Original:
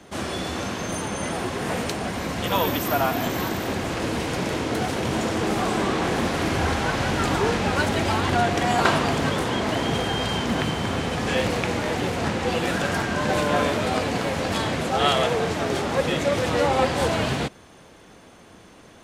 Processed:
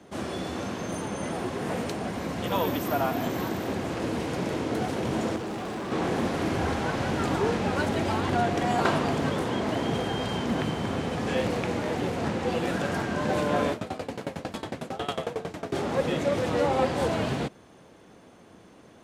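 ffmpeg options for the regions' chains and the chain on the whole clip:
ffmpeg -i in.wav -filter_complex "[0:a]asettb=1/sr,asplit=3[link_01][link_02][link_03];[link_01]atrim=end=5.364[link_04];[link_02]atrim=start=5.36:end=5.92,asetpts=PTS-STARTPTS,afade=type=in:duration=0.004:curve=qsin,afade=type=out:start_time=0.556:duration=0.004:curve=qsin,highshelf=frequency=9300:gain=-6.5,asoftclip=type=hard:threshold=-28dB[link_05];[link_03]atrim=start=5.916[link_06];[link_04][link_05]acrossfade=duration=0.004:curve1=hsin:curve2=qsin[link_07];[link_07][link_06]acrossfade=duration=0.004:curve1=qsin:curve2=hsin,asettb=1/sr,asplit=3[link_08][link_09][link_10];[link_08]atrim=end=13.724[link_11];[link_09]atrim=start=13.72:end=15.73,asetpts=PTS-STARTPTS,afade=type=in:duration=0.004:curve=qsin,afade=type=out:start_time=2.006:duration=0.004:curve=qsin,highshelf=frequency=8700:gain=4,aeval=exprs='val(0)*pow(10,-21*if(lt(mod(11*n/s,1),2*abs(11)/1000),1-mod(11*n/s,1)/(2*abs(11)/1000),(mod(11*n/s,1)-2*abs(11)/1000)/(1-2*abs(11)/1000))/20)':channel_layout=same[link_12];[link_10]atrim=start=15.726[link_13];[link_11][link_12]acrossfade=duration=0.004:curve1=hsin:curve2=qsin[link_14];[link_14][link_13]acrossfade=duration=0.004:curve1=qsin:curve2=hsin,highpass=frequency=130:poles=1,tiltshelf=frequency=860:gain=4,volume=-4.5dB" out.wav

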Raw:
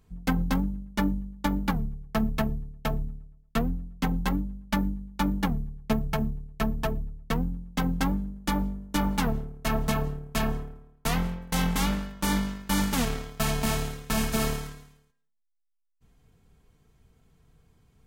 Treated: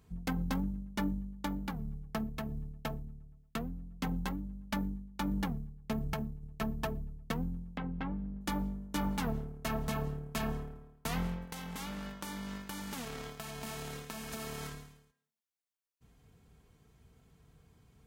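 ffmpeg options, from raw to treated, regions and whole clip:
ffmpeg -i in.wav -filter_complex "[0:a]asettb=1/sr,asplit=3[link_01][link_02][link_03];[link_01]atrim=end=1.424[link_04];[link_02]atrim=start=1.42:end=6.42,asetpts=PTS-STARTPTS,afade=type=in:duration=0.004:curve=qsin,afade=type=out:start_time=4.996:duration=0.004:curve=qsin,acompressor=threshold=-27dB:ratio=2.5:attack=3.2:release=140:knee=1:detection=peak,tremolo=f=1.5:d=0.5[link_05];[link_03]atrim=start=6.416[link_06];[link_04][link_05]acrossfade=duration=0.004:curve1=hsin:curve2=qsin[link_07];[link_07][link_06]acrossfade=duration=0.004:curve1=qsin:curve2=hsin,asettb=1/sr,asplit=3[link_08][link_09][link_10];[link_08]atrim=end=7.774[link_11];[link_09]atrim=start=7.77:end=8.41,asetpts=PTS-STARTPTS,afade=type=in:duration=0.004:curve=qsin,afade=type=out:start_time=0.636:duration=0.004:curve=qsin,lowpass=frequency=3000:width=0.5412,lowpass=frequency=3000:width=1.3066,acompressor=threshold=-35dB:ratio=3:attack=3.2:release=140:knee=1:detection=peak[link_12];[link_10]atrim=start=8.406[link_13];[link_11][link_12]acrossfade=duration=0.004:curve1=hsin:curve2=qsin[link_14];[link_14][link_13]acrossfade=duration=0.004:curve1=qsin:curve2=hsin,asettb=1/sr,asplit=3[link_15][link_16][link_17];[link_15]atrim=end=11.454[link_18];[link_16]atrim=start=11.45:end=14.72,asetpts=PTS-STARTPTS,afade=type=in:duration=0.004:curve=qsin,afade=type=out:start_time=3.266:duration=0.004:curve=qsin,lowshelf=frequency=160:gain=-7.5,acompressor=threshold=-35dB:ratio=16:attack=3.2:release=140:knee=1:detection=peak[link_19];[link_17]atrim=start=14.716[link_20];[link_18][link_19]acrossfade=duration=0.004:curve1=hsin:curve2=qsin[link_21];[link_21][link_20]acrossfade=duration=0.004:curve1=qsin:curve2=hsin,alimiter=limit=-23dB:level=0:latency=1:release=472,highpass=43" out.wav

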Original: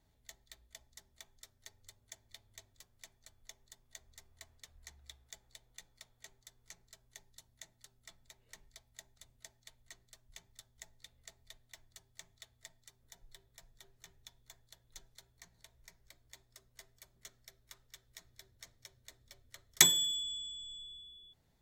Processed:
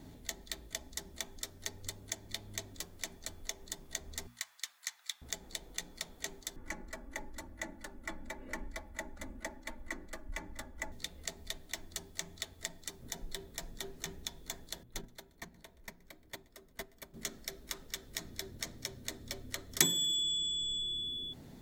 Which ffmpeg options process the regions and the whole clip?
ffmpeg -i in.wav -filter_complex "[0:a]asettb=1/sr,asplit=3[link_01][link_02][link_03];[link_01]atrim=end=4.274[link_04];[link_02]atrim=start=4.27:end=5.22,asetpts=PTS-STARTPTS,afade=type=in:duration=0.004:curve=qsin,afade=type=out:start_time=0.946:duration=0.004:curve=qsin,highpass=frequency=1100:width=0.5412,highpass=frequency=1100:width=1.3066,acrusher=bits=9:mode=log:mix=0:aa=0.000001[link_05];[link_03]atrim=start=5.216[link_06];[link_04][link_05]acrossfade=duration=0.004:curve1=hsin:curve2=qsin[link_07];[link_07][link_06]acrossfade=duration=0.004:curve1=qsin:curve2=hsin,asettb=1/sr,asplit=3[link_08][link_09][link_10];[link_08]atrim=end=6.564[link_11];[link_09]atrim=start=6.56:end=10.92,asetpts=PTS-STARTPTS,afade=type=in:duration=0.004:curve=qsin,afade=type=out:start_time=4.356:duration=0.004:curve=qsin,highshelf=frequency=2500:width_type=q:width=1.5:gain=-12.5,aecho=1:1:3.5:0.97,atrim=end_sample=192276[link_12];[link_10]atrim=start=10.916[link_13];[link_11][link_12]acrossfade=duration=0.004:curve1=hsin:curve2=qsin[link_14];[link_14][link_13]acrossfade=duration=0.004:curve1=qsin:curve2=hsin,asettb=1/sr,asplit=3[link_15][link_16][link_17];[link_15]atrim=end=14.834[link_18];[link_16]atrim=start=14.83:end=17.14,asetpts=PTS-STARTPTS,afade=type=in:duration=0.004:curve=qsin,afade=type=out:start_time=2.306:duration=0.004:curve=qsin,equalizer=frequency=6300:width=0.6:gain=-8.5,aecho=1:1:126|252|378:0.112|0.0494|0.0217,atrim=end_sample=101871,agate=range=-10dB:threshold=-60dB:ratio=16:release=100:detection=peak[link_19];[link_17]atrim=start=17.136[link_20];[link_18][link_19]acrossfade=duration=0.004:curve1=hsin:curve2=qsin[link_21];[link_21][link_20]acrossfade=duration=0.004:curve1=qsin:curve2=hsin,equalizer=frequency=250:width=0.92:gain=14,bandreject=frequency=60:width_type=h:width=6,bandreject=frequency=120:width_type=h:width=6,bandreject=frequency=180:width_type=h:width=6,bandreject=frequency=240:width_type=h:width=6,acompressor=threshold=-53dB:ratio=2.5,volume=16.5dB" out.wav

